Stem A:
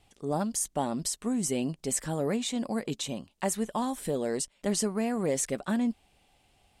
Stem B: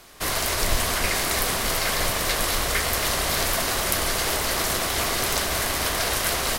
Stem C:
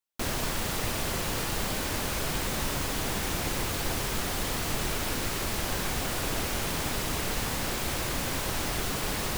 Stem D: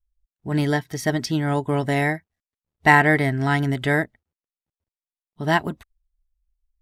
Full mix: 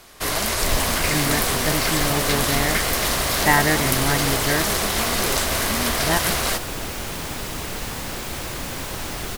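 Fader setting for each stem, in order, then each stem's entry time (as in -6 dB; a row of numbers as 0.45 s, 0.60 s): -4.0 dB, +1.5 dB, +1.0 dB, -3.5 dB; 0.00 s, 0.00 s, 0.45 s, 0.60 s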